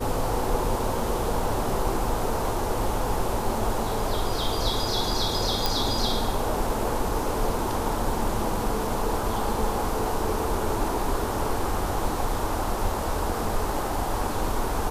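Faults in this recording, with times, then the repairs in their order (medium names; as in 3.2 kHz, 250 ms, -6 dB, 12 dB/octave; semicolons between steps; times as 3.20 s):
5.66 s: pop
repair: de-click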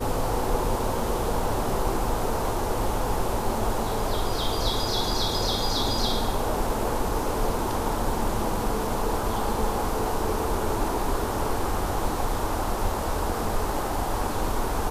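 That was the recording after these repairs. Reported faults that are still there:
nothing left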